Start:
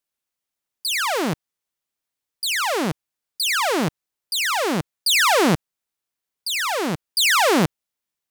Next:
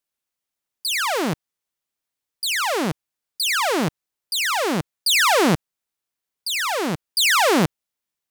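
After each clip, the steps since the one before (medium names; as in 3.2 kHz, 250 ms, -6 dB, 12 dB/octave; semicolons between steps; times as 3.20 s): no audible change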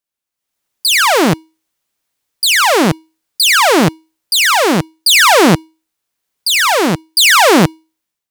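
level rider gain up to 13 dB; feedback comb 320 Hz, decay 0.33 s, harmonics odd, mix 40%; trim +3.5 dB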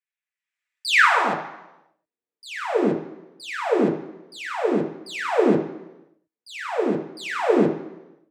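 band-pass sweep 2 kHz -> 390 Hz, 0.85–1.64 s; reverberation RT60 1.0 s, pre-delay 3 ms, DRR 0.5 dB; trim -1.5 dB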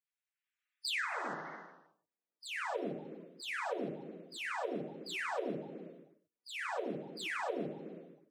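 coarse spectral quantiser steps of 30 dB; compression 6:1, threshold -30 dBFS, peak gain reduction 17 dB; trim -5.5 dB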